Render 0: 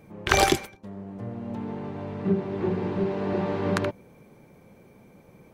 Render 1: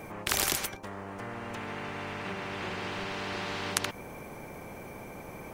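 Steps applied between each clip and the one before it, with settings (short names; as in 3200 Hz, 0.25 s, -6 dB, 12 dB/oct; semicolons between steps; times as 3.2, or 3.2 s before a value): bell 3900 Hz -5.5 dB 0.66 oct; spectral compressor 4:1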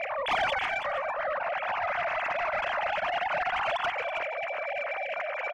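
sine-wave speech; overdrive pedal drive 17 dB, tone 1500 Hz, clips at -17 dBFS; echo 0.326 s -9 dB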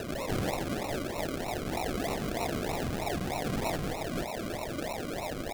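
stepped spectrum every 0.1 s; decimation with a swept rate 39×, swing 60% 3.2 Hz; crackling interface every 0.77 s, samples 512, repeat, from 0.65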